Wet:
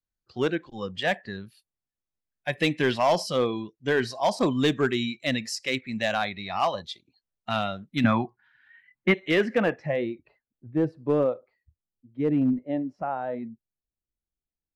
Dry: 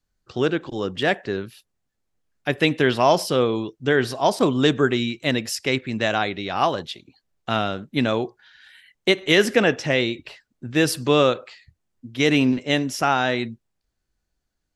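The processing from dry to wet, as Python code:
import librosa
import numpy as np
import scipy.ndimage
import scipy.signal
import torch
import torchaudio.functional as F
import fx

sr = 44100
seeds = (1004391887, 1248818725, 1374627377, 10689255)

p1 = fx.noise_reduce_blind(x, sr, reduce_db=12)
p2 = fx.filter_sweep_lowpass(p1, sr, from_hz=7800.0, to_hz=630.0, start_s=7.82, end_s=10.7, q=0.76)
p3 = 10.0 ** (-13.5 / 20.0) * (np.abs((p2 / 10.0 ** (-13.5 / 20.0) + 3.0) % 4.0 - 2.0) - 1.0)
p4 = p2 + (p3 * 10.0 ** (-6.0 / 20.0))
p5 = fx.graphic_eq_10(p4, sr, hz=(125, 250, 500, 1000, 2000, 4000, 8000), db=(10, 9, -9, 9, 6, -7, -10), at=(8.04, 9.14))
y = p5 * 10.0 ** (-7.0 / 20.0)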